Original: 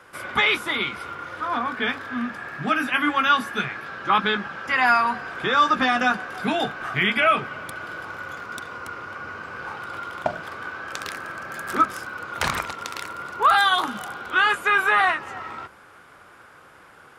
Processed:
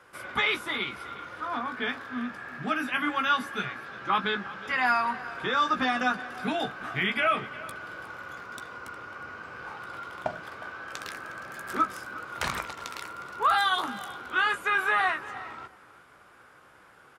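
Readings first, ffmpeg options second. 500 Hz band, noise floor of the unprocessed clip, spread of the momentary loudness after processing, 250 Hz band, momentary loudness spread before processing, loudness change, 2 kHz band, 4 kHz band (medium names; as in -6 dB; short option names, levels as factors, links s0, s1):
-6.0 dB, -50 dBFS, 15 LU, -5.5 dB, 16 LU, -6.0 dB, -6.0 dB, -6.0 dB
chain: -filter_complex "[0:a]asplit=2[s0][s1];[s1]adelay=16,volume=0.282[s2];[s0][s2]amix=inputs=2:normalize=0,asplit=2[s3][s4];[s4]aecho=0:1:361:0.126[s5];[s3][s5]amix=inputs=2:normalize=0,volume=0.473"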